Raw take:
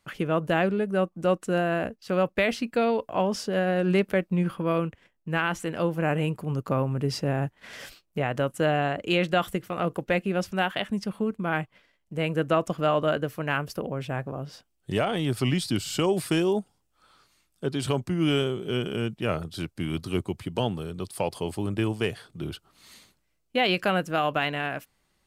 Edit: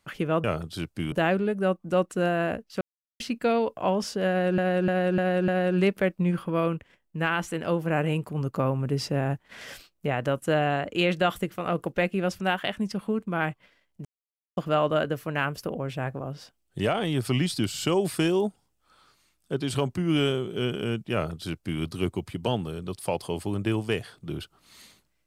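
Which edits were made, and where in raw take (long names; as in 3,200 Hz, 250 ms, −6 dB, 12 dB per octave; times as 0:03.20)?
0:02.13–0:02.52: silence
0:03.60–0:03.90: repeat, 5 plays
0:12.17–0:12.69: silence
0:19.25–0:19.93: duplicate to 0:00.44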